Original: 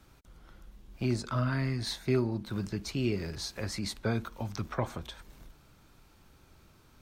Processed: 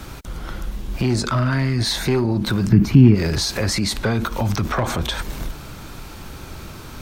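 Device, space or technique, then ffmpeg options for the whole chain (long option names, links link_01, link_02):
loud club master: -filter_complex "[0:a]acompressor=threshold=-36dB:ratio=1.5,asoftclip=type=hard:threshold=-27.5dB,alimiter=level_in=36dB:limit=-1dB:release=50:level=0:latency=1,asplit=3[link_01][link_02][link_03];[link_01]afade=type=out:start_time=2.67:duration=0.02[link_04];[link_02]equalizer=frequency=125:width_type=o:width=1:gain=11,equalizer=frequency=250:width_type=o:width=1:gain=10,equalizer=frequency=500:width_type=o:width=1:gain=-7,equalizer=frequency=4000:width_type=o:width=1:gain=-9,equalizer=frequency=8000:width_type=o:width=1:gain=-12,afade=type=in:start_time=2.67:duration=0.02,afade=type=out:start_time=3.14:duration=0.02[link_05];[link_03]afade=type=in:start_time=3.14:duration=0.02[link_06];[link_04][link_05][link_06]amix=inputs=3:normalize=0,volume=-12dB"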